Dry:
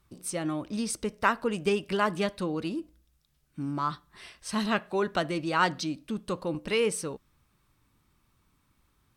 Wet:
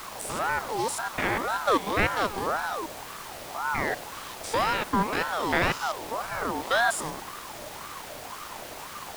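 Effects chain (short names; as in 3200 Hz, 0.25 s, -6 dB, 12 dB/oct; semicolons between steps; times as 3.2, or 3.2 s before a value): stepped spectrum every 0.1 s; added noise pink -44 dBFS; ring modulator with a swept carrier 890 Hz, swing 35%, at 1.9 Hz; gain +7 dB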